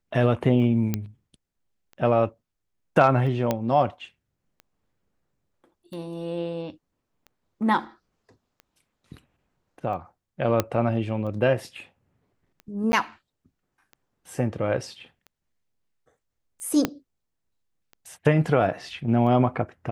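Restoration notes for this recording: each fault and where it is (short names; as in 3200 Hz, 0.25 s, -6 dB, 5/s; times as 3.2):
tick 45 rpm -30 dBFS
0.94 pop -11 dBFS
3.51 pop -10 dBFS
10.6 pop -7 dBFS
12.92–12.93 gap 10 ms
16.85 pop -8 dBFS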